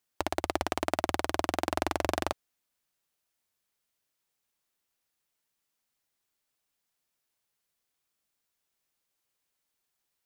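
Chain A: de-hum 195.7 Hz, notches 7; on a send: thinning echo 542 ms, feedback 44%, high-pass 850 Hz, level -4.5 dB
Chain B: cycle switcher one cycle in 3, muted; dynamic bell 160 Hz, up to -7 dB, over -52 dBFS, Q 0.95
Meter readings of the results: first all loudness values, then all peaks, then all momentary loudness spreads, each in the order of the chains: -32.5 LUFS, -35.5 LUFS; -8.5 dBFS, -8.5 dBFS; 17 LU, 5 LU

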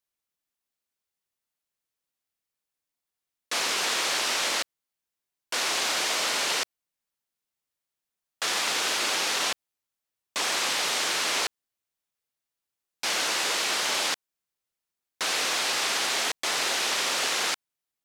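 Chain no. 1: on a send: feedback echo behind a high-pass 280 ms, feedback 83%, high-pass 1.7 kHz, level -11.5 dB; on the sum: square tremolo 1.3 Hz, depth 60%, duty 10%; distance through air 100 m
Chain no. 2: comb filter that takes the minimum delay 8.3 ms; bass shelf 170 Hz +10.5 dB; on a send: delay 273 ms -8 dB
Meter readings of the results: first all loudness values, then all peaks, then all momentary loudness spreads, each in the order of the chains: -34.5 LUFS, -26.5 LUFS; -16.0 dBFS, -14.0 dBFS; 14 LU, 11 LU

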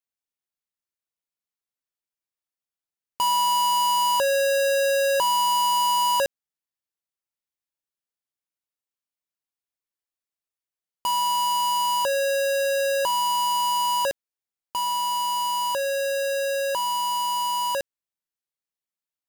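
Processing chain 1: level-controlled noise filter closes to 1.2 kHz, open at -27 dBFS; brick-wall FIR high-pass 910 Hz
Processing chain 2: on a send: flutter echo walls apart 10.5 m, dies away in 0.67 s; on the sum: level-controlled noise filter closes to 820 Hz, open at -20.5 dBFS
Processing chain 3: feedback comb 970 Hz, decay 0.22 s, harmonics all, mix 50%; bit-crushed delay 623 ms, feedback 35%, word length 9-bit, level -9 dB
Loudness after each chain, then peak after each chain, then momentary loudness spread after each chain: -23.5 LUFS, -23.5 LUFS, -25.0 LUFS; -17.0 dBFS, -14.0 dBFS, -18.0 dBFS; 10 LU, 6 LU, 13 LU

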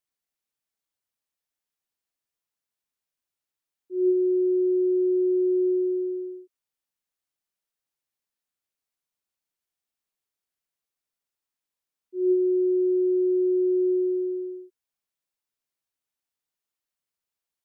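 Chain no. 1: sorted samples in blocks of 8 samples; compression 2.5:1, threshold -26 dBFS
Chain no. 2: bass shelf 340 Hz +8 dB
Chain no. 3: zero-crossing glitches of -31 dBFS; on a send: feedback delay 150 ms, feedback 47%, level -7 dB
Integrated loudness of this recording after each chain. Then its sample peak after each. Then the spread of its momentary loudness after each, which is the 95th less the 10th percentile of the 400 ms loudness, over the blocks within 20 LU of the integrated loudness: -27.0 LUFS, -20.0 LUFS, -25.0 LUFS; -21.0 dBFS, -12.0 dBFS, -14.5 dBFS; 9 LU, 11 LU, 12 LU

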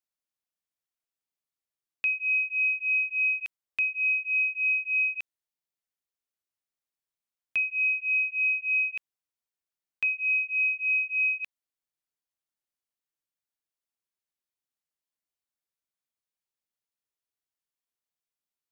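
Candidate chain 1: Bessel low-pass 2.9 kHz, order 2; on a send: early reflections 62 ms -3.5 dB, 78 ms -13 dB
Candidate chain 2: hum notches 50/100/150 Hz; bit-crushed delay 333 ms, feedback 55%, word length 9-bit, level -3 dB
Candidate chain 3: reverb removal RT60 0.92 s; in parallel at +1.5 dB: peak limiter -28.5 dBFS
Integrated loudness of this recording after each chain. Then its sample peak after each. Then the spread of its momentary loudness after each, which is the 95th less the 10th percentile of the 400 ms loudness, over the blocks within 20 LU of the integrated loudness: -24.0 LUFS, -28.5 LUFS, -22.5 LUFS; -19.5 dBFS, -18.5 dBFS, -17.5 dBFS; 8 LU, 14 LU, 7 LU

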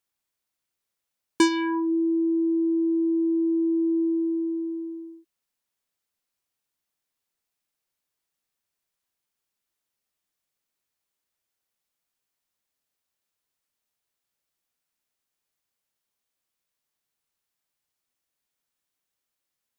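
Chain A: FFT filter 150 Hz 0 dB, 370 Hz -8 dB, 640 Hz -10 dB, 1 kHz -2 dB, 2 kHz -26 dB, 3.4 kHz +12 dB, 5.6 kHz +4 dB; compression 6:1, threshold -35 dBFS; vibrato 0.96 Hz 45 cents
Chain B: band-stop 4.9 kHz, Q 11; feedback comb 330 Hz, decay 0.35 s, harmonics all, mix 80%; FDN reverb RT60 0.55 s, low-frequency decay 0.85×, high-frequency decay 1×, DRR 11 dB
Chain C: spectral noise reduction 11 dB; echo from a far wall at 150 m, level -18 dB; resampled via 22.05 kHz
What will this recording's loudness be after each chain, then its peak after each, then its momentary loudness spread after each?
-37.5 LUFS, -22.5 LUFS, -24.5 LUFS; -19.5 dBFS, -15.5 dBFS, -10.5 dBFS; 5 LU, 8 LU, 10 LU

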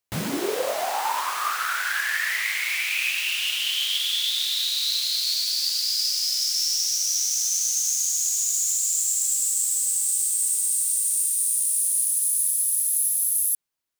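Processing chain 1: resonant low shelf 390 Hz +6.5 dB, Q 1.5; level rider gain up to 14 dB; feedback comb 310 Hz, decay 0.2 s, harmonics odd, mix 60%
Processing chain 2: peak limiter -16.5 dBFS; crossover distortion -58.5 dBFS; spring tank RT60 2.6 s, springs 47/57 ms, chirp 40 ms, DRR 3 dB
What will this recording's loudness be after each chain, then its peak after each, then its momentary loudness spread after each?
-18.5 LUFS, -23.0 LUFS; -8.0 dBFS, -13.5 dBFS; 5 LU, 2 LU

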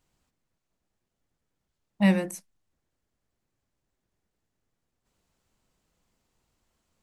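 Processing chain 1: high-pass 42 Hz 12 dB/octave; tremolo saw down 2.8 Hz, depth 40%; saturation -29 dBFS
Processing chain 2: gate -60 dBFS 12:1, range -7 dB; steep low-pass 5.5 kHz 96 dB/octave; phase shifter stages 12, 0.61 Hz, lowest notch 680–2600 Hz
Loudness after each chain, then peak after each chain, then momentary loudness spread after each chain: -36.5 LUFS, -24.0 LUFS; -29.0 dBFS, -12.0 dBFS; 9 LU, 11 LU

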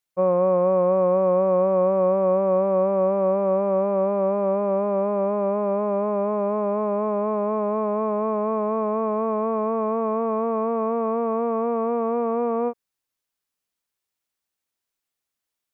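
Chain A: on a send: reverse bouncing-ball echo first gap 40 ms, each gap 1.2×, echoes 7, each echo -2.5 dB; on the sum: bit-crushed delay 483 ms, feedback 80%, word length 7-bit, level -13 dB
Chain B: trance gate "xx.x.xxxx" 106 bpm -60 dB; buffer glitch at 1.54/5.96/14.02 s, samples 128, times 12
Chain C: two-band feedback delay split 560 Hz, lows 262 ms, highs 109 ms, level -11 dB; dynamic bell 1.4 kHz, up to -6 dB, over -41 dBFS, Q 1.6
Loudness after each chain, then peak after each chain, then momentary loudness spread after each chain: -18.5 LUFS, -23.5 LUFS, -22.5 LUFS; -4.5 dBFS, -10.5 dBFS, -8.5 dBFS; 14 LU, 7 LU, 5 LU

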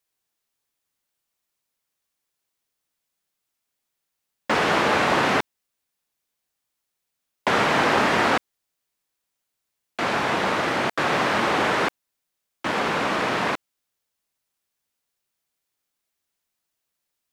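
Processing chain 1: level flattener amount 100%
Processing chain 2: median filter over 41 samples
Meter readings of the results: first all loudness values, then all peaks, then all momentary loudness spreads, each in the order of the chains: -18.5 LUFS, -28.5 LUFS; -4.0 dBFS, -14.0 dBFS; 20 LU, 9 LU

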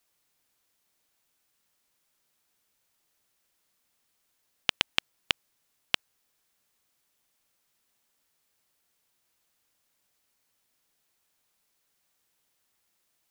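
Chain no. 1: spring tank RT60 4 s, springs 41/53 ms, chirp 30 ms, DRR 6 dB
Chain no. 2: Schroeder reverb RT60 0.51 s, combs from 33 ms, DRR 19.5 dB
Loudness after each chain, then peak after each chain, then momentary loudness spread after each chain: -31.5 LUFS, -31.0 LUFS; -1.0 dBFS, -1.0 dBFS; 19 LU, 4 LU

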